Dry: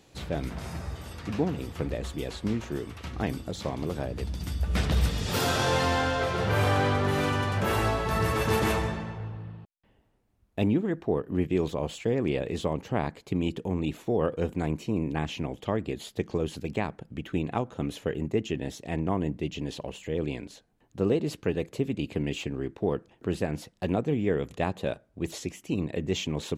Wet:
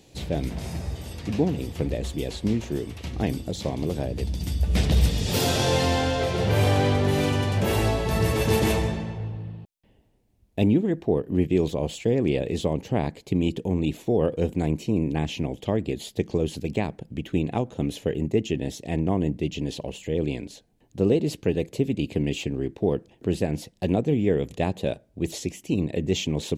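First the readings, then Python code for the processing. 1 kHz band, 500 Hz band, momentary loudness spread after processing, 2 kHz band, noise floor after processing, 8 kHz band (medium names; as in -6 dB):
-0.5 dB, +4.0 dB, 9 LU, -0.5 dB, -61 dBFS, +5.0 dB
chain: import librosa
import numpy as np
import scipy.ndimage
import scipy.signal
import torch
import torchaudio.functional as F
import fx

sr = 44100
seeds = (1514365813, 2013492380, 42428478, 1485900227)

y = fx.peak_eq(x, sr, hz=1300.0, db=-11.5, octaves=1.0)
y = y * librosa.db_to_amplitude(5.0)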